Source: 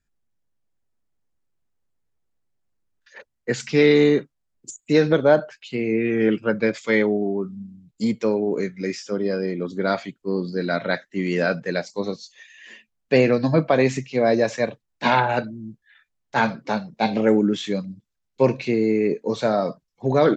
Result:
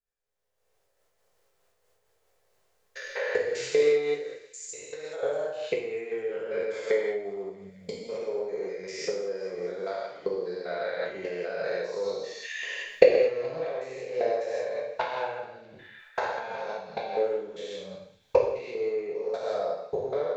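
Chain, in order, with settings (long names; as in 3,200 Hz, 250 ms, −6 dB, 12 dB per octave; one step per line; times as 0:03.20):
spectrum averaged block by block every 200 ms
camcorder AGC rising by 38 dB per second
0:04.17–0:05.23: parametric band 200 Hz −14 dB 2.6 octaves
transient designer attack +9 dB, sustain +5 dB
low shelf with overshoot 350 Hz −10 dB, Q 3
on a send: delay with a high-pass on its return 213 ms, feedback 74%, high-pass 2,000 Hz, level −20 dB
on the sum: reverb whose tail is shaped and stops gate 260 ms falling, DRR −1.5 dB
amplitude modulation by smooth noise, depth 60%
level −14 dB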